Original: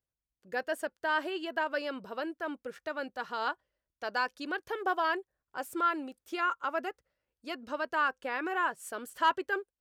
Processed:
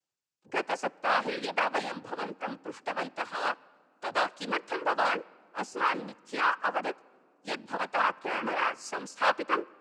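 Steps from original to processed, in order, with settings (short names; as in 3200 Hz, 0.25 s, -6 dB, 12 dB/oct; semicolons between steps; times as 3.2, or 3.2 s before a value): repeated pitch sweeps -2.5 st, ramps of 1.425 s; high shelf 5900 Hz +4.5 dB; noise vocoder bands 8; in parallel at -12 dB: sine folder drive 7 dB, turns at -13 dBFS; on the sum: low shelf 250 Hz -8.5 dB; on a send at -23 dB: reverb RT60 2.1 s, pre-delay 4 ms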